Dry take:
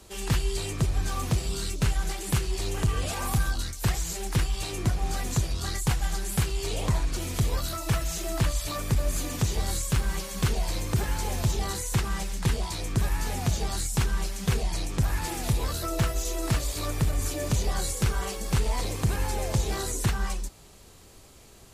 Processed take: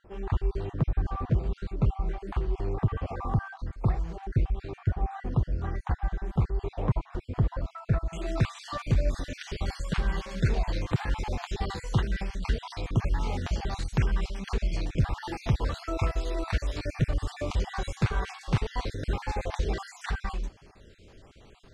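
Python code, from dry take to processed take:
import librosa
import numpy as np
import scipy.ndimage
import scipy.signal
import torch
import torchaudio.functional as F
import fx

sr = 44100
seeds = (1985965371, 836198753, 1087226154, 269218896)

y = fx.spec_dropout(x, sr, seeds[0], share_pct=37)
y = fx.lowpass(y, sr, hz=fx.steps((0.0, 1200.0), (8.13, 3300.0)), slope=12)
y = y * 10.0 ** (1.0 / 20.0)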